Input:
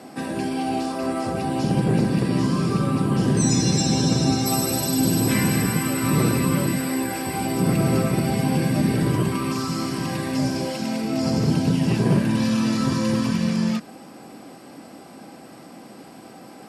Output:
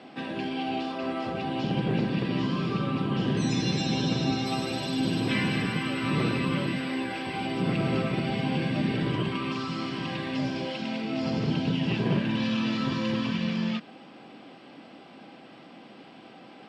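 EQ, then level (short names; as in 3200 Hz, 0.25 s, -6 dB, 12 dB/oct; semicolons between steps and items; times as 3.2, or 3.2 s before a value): synth low-pass 3200 Hz, resonance Q 2.8; bell 73 Hz -5.5 dB 1.3 oct; -6.0 dB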